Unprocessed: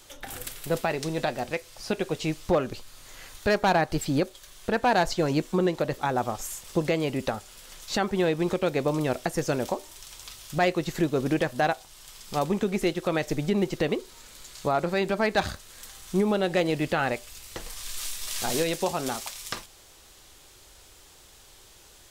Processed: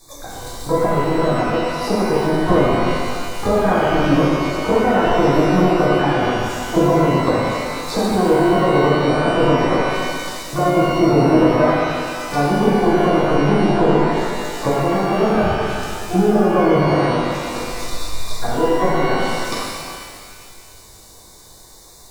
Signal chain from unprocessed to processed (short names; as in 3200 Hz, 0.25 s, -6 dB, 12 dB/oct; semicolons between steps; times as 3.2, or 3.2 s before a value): treble ducked by the level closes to 610 Hz, closed at -24 dBFS; FFT band-reject 1200–3500 Hz; transient shaper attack +6 dB, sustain +10 dB; harmoniser +12 st -8 dB; shimmer reverb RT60 2 s, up +12 st, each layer -8 dB, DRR -7.5 dB